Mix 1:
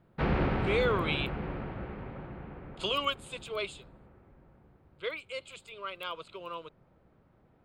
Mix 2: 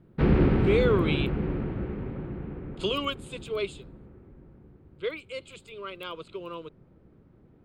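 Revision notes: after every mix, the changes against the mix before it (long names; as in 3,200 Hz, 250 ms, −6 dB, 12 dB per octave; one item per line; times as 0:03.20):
master: add low shelf with overshoot 500 Hz +7.5 dB, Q 1.5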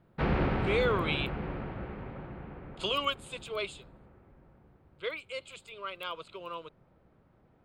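master: add low shelf with overshoot 500 Hz −7.5 dB, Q 1.5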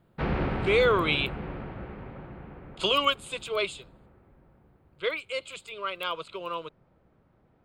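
speech +6.5 dB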